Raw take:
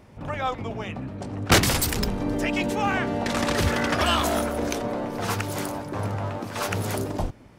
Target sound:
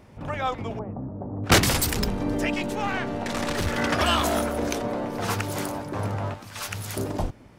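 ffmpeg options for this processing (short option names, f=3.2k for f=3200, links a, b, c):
-filter_complex "[0:a]asettb=1/sr,asplit=3[a][b][c];[a]atrim=end=0.794[d];[b]atrim=start=0.79:end=1.44,asetpts=PTS-STARTPTS,afade=t=in:d=0.004:c=qsin,afade=t=out:st=0.646:d=0.004:c=qsin,lowpass=f=1k:w=0.5412,lowpass=f=1k:w=1.3066[e];[c]atrim=start=1.436[f];[d][e]acrossfade=d=0.004:c1=hsin:c2=qsin[g];[g][f]acrossfade=d=0.004:c1=qsin:c2=hsin,asettb=1/sr,asplit=3[h][i][j];[h]atrim=end=2.544[k];[i]atrim=start=2.54:end=3.78,asetpts=PTS-STARTPTS,afade=t=in:d=0.004:c=qsin,afade=t=out:st=1.236:d=0.004:c=qsin,aeval=exprs='(tanh(8.91*val(0)+0.6)-tanh(0.6))/8.91':c=same[l];[j]atrim=start=3.776[m];[k][l]acrossfade=d=0.004:c1=hsin:c2=qsin[n];[n][m]acrossfade=d=0.004:c1=qsin:c2=hsin,asettb=1/sr,asplit=3[o][p][q];[o]atrim=end=6.344[r];[p]atrim=start=6.34:end=6.97,asetpts=PTS-STARTPTS,afade=t=in:d=0.004:c=qsin,afade=t=out:st=0.626:d=0.004:c=qsin,equalizer=f=390:w=0.4:g=-15[s];[q]atrim=start=6.966[t];[r][s]acrossfade=d=0.004:c1=hsin:c2=qsin[u];[u][t]acrossfade=d=0.004:c1=qsin:c2=hsin"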